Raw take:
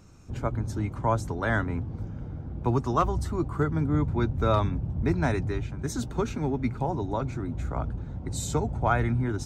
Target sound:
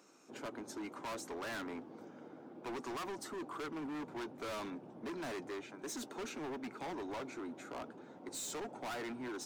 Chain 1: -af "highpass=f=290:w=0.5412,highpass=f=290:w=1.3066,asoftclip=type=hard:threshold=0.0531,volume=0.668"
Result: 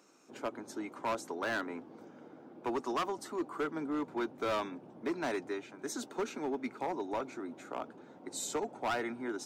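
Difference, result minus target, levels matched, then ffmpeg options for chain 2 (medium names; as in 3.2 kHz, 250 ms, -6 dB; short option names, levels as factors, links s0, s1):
hard clipper: distortion -7 dB
-af "highpass=f=290:w=0.5412,highpass=f=290:w=1.3066,asoftclip=type=hard:threshold=0.015,volume=0.668"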